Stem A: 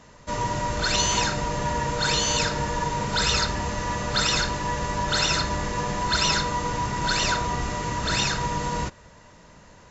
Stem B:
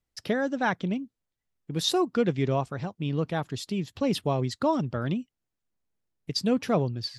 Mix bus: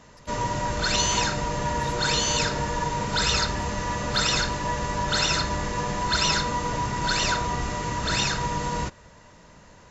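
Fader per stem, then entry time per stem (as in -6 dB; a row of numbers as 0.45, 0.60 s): -0.5, -17.0 dB; 0.00, 0.00 s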